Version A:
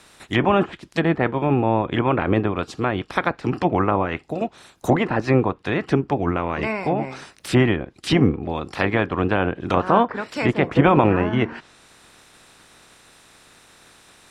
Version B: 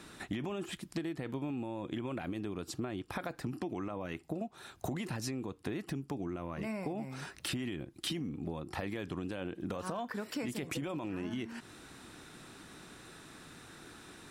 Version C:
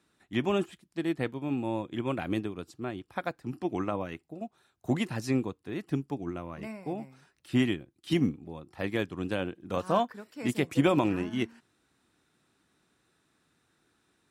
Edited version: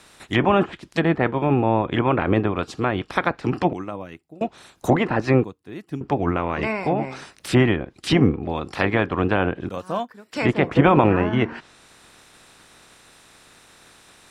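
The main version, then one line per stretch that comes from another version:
A
3.73–4.41 from C
5.44–6.01 from C
9.69–10.33 from C
not used: B

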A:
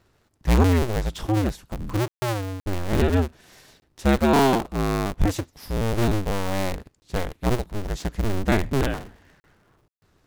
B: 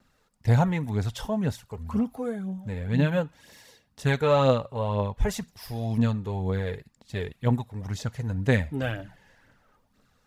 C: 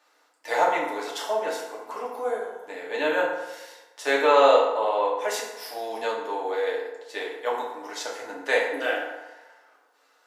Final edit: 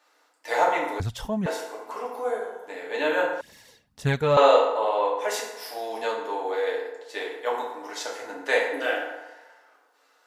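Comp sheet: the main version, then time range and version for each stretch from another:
C
1–1.46 from B
3.41–4.37 from B
not used: A

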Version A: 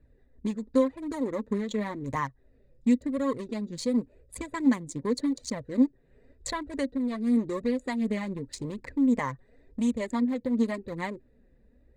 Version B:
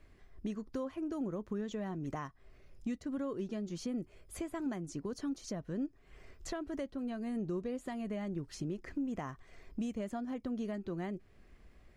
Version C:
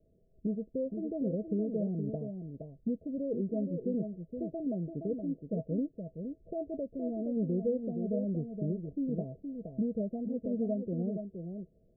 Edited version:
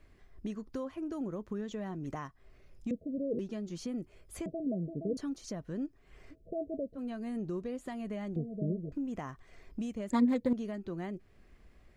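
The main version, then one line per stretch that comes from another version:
B
2.91–3.39 from C
4.46–5.17 from C
6.33–6.96 from C, crossfade 0.06 s
8.36–8.92 from C
10.1–10.53 from A

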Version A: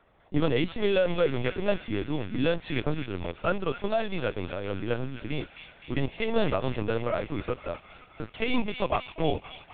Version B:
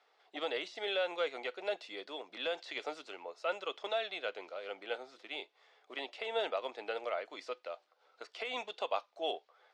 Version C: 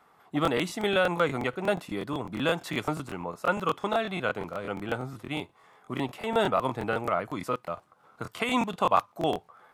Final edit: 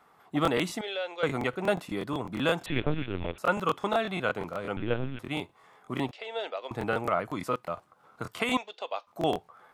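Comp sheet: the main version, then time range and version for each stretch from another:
C
0.81–1.23 from B
2.66–3.38 from A
4.77–5.19 from A
6.11–6.71 from B
8.57–9.07 from B

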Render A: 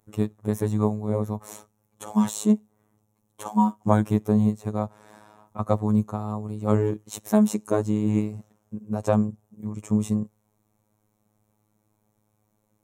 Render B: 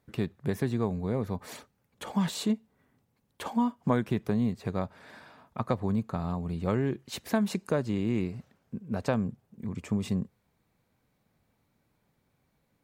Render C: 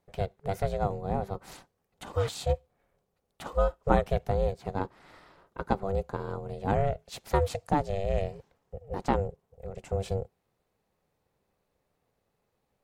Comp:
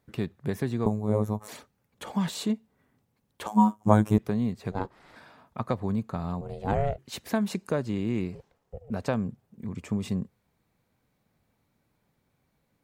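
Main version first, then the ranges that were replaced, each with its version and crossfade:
B
0.86–1.48 from A
3.47–4.18 from A
4.72–5.16 from C
6.41–6.98 from C
8.35–8.9 from C

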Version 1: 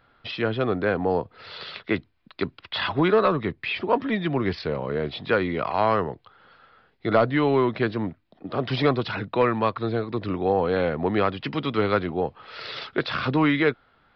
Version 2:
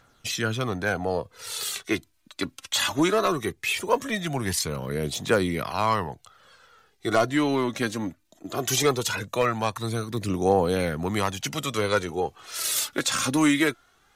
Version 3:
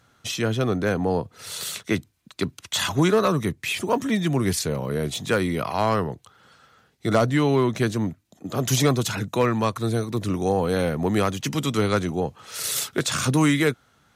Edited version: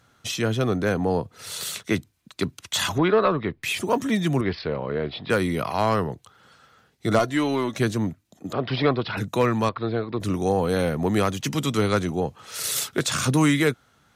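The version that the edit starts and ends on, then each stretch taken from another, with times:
3
2.98–3.63 from 1
4.41–5.3 from 1
7.19–7.78 from 2
8.53–9.17 from 1
9.69–10.2 from 1

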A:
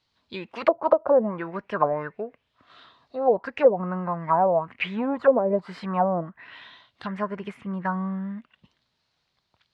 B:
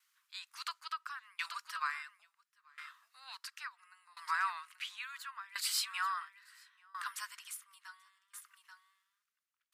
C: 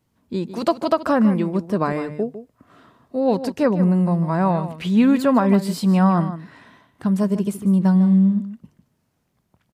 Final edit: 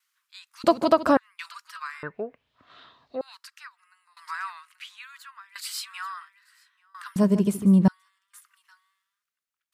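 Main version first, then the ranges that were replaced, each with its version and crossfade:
B
0.64–1.17 from C
2.03–3.21 from A
7.16–7.88 from C

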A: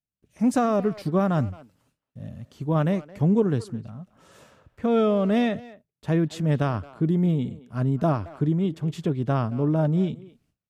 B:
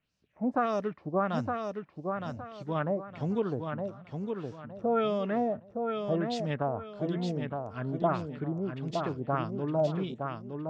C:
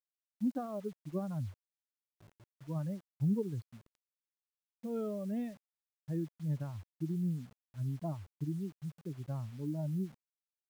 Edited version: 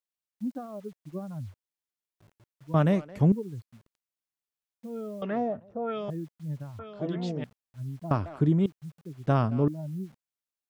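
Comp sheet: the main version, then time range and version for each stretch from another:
C
2.74–3.32 from A
5.22–6.1 from B
6.79–7.44 from B
8.11–8.66 from A
9.27–9.68 from A

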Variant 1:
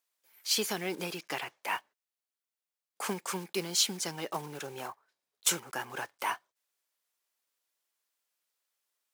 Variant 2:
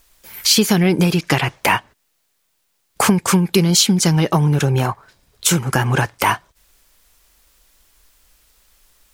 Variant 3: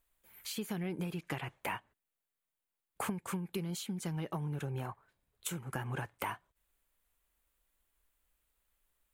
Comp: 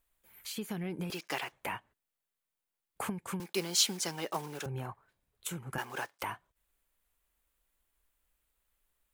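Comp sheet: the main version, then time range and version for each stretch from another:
3
1.1–1.52 from 1
3.4–4.66 from 1
5.78–6.23 from 1
not used: 2

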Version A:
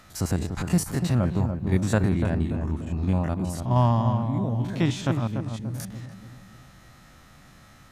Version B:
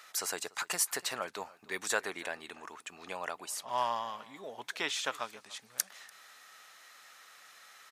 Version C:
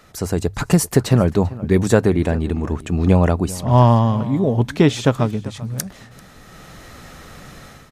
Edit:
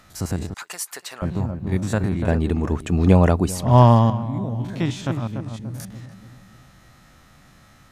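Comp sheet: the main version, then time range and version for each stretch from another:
A
0.54–1.22 from B
2.28–4.1 from C

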